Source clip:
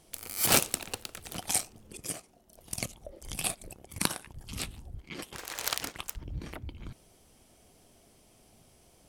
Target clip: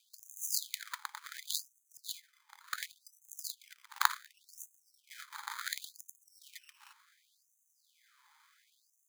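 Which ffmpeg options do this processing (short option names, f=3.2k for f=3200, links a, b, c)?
-filter_complex "[0:a]asettb=1/sr,asplit=3[a][b][c];[a]atrim=end=1.204[d];[b]atrim=start=1.2:end=3.4,asetpts=PTS-STARTPTS,afade=t=in:d=0.004:c=qsin,afade=t=out:st=2.196:d=0.004:c=qsin,highshelf=f=11k:g=7.5[e];[c]atrim=start=3.396[f];[d][e]acrossfade=d=0.004:c1=hsin:c2=qsin[g];[g][f]acrossfade=d=0.004:c1=qsin:c2=hsin,acrusher=samples=16:mix=1:aa=0.000001,afftfilt=real='re*gte(b*sr/1024,790*pow(6200/790,0.5+0.5*sin(2*PI*0.69*pts/sr)))':imag='im*gte(b*sr/1024,790*pow(6200/790,0.5+0.5*sin(2*PI*0.69*pts/sr)))':win_size=1024:overlap=0.75,volume=1dB"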